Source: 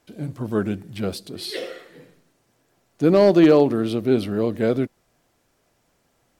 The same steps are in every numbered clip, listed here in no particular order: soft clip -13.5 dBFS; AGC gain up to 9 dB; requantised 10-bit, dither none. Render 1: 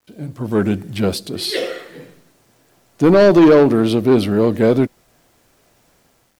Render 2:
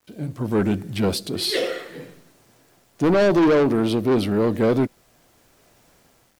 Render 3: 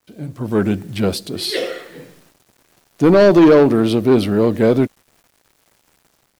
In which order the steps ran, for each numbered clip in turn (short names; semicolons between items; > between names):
soft clip > AGC > requantised; AGC > requantised > soft clip; requantised > soft clip > AGC